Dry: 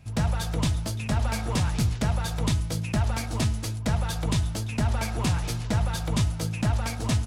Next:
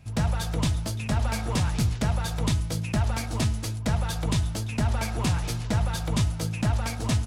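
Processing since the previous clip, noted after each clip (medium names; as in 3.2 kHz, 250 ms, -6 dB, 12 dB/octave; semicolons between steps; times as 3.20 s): no audible change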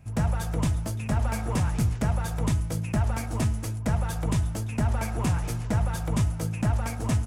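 peaking EQ 4 kHz -10.5 dB 1.1 oct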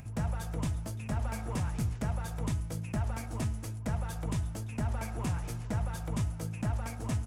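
upward compressor, threshold -31 dBFS; trim -7.5 dB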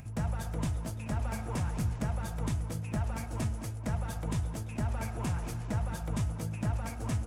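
tape echo 219 ms, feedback 60%, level -8.5 dB, low-pass 3 kHz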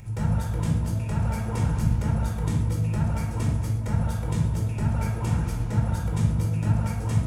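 simulated room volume 2000 m³, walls furnished, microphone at 4.5 m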